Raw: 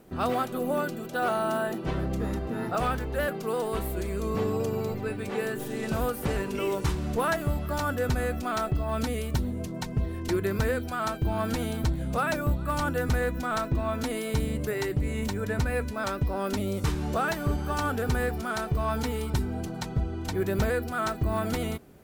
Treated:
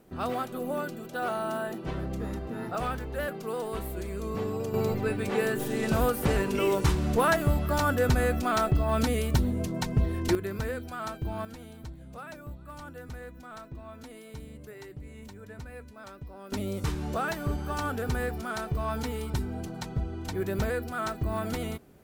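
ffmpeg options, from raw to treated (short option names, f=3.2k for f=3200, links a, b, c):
-af "asetnsamples=n=441:p=0,asendcmd='4.74 volume volume 3dB;10.35 volume volume -6dB;11.45 volume volume -15.5dB;16.52 volume volume -3dB',volume=-4dB"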